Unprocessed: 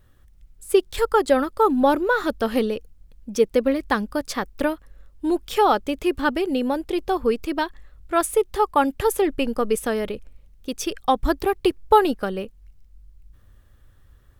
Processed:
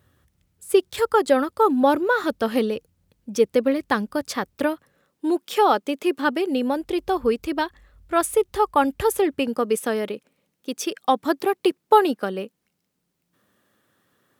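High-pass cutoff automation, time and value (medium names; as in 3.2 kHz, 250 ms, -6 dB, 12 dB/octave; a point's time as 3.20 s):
high-pass 24 dB/octave
4.55 s 82 Hz
5.29 s 200 Hz
6.47 s 200 Hz
6.88 s 49 Hz
9.07 s 49 Hz
9.70 s 180 Hz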